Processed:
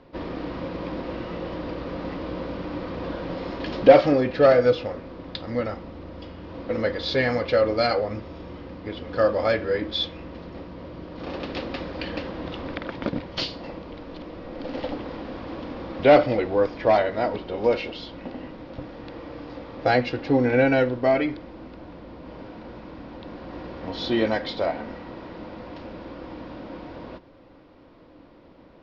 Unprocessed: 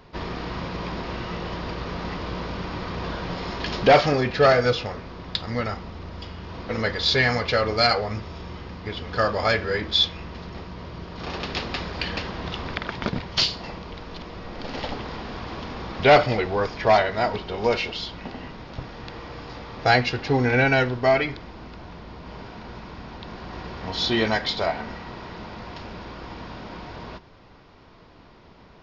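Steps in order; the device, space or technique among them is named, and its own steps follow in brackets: inside a cardboard box (LPF 4300 Hz 12 dB/oct; small resonant body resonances 300/520 Hz, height 13 dB, ringing for 40 ms); gain -5.5 dB

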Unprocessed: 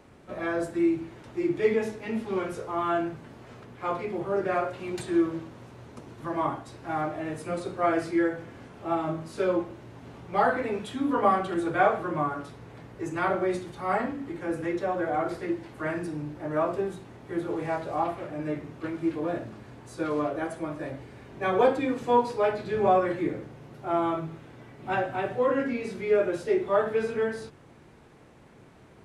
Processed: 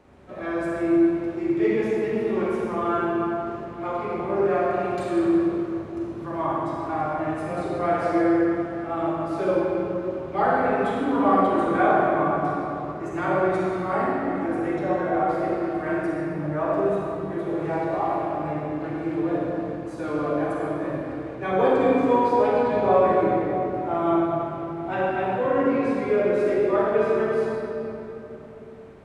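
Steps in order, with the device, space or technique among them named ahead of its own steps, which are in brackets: swimming-pool hall (reverb RT60 3.4 s, pre-delay 36 ms, DRR -4.5 dB; high shelf 4000 Hz -7 dB); gain -1.5 dB

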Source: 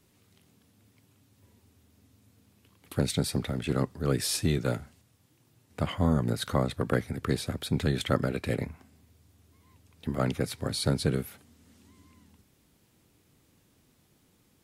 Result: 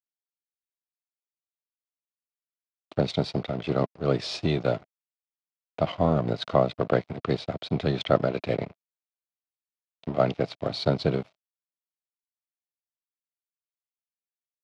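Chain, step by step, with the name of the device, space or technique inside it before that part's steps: blown loudspeaker (crossover distortion -42 dBFS; speaker cabinet 130–4600 Hz, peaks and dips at 240 Hz -6 dB, 660 Hz +10 dB, 1700 Hz -7 dB); gain +4.5 dB

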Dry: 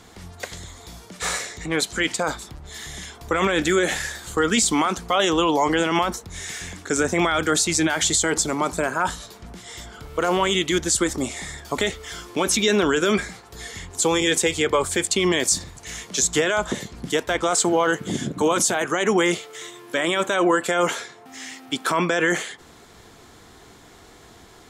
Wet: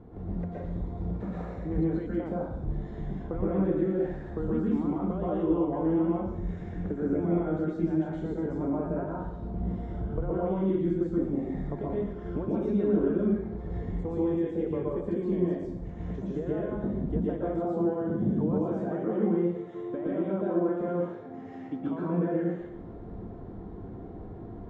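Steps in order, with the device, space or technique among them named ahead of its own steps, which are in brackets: television next door (compressor 3:1, threshold -35 dBFS, peak gain reduction 14.5 dB; LPF 450 Hz 12 dB/oct; reverb RT60 0.80 s, pre-delay 0.112 s, DRR -6 dB); gain +2.5 dB

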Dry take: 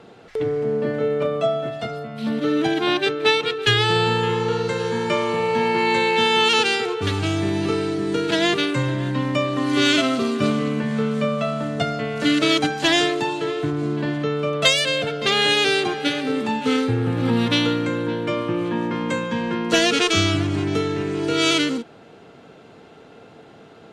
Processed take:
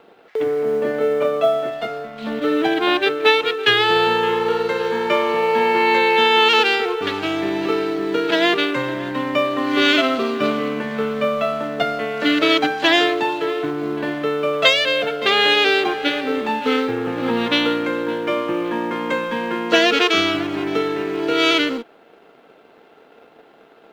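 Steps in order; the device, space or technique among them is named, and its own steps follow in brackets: phone line with mismatched companding (BPF 330–3400 Hz; G.711 law mismatch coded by A); gain +5 dB

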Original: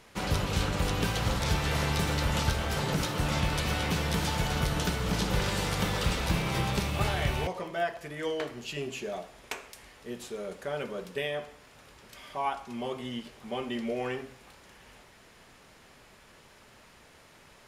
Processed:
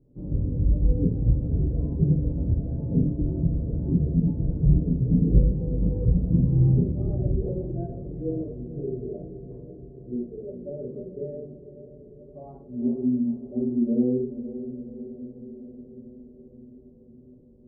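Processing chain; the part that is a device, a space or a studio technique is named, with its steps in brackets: next room (LPF 350 Hz 24 dB/oct; reverb RT60 0.55 s, pre-delay 3 ms, DRR -6 dB); 5.47–5.91 LPF 1300 Hz -> 2700 Hz; spectral noise reduction 8 dB; diffused feedback echo 0.494 s, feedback 68%, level -12 dB; gain +5 dB

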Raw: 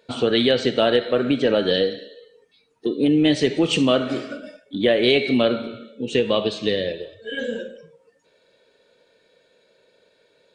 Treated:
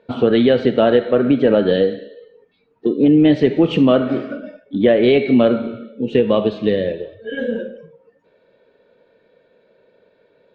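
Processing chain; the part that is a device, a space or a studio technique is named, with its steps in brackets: phone in a pocket (LPF 3200 Hz 12 dB/oct; bell 210 Hz +3 dB 0.44 oct; high shelf 2100 Hz -11.5 dB); gain +5.5 dB

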